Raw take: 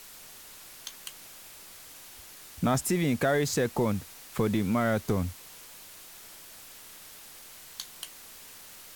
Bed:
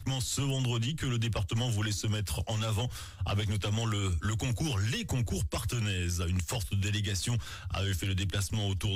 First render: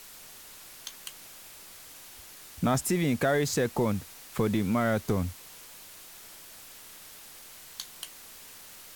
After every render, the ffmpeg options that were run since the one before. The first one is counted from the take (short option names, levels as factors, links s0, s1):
-af anull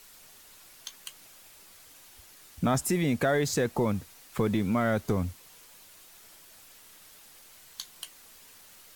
-af "afftdn=nr=6:nf=-49"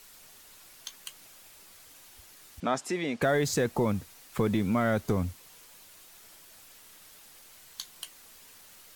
-filter_complex "[0:a]asettb=1/sr,asplit=3[s0][s1][s2];[s0]atrim=end=2.604[s3];[s1]atrim=start=2.6:end=3.22,asetpts=PTS-STARTPTS,afade=t=in:d=0.004:c=qsin,afade=t=out:st=0.616:d=0.004:c=qsin,highpass=330,lowpass=5400[s4];[s2]atrim=start=3.216[s5];[s3][s4]acrossfade=d=0.004:c1=hsin:c2=qsin[s6];[s6][s5]acrossfade=d=0.004:c1=qsin:c2=hsin"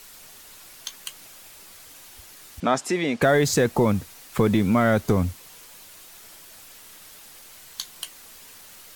-af "volume=2.24"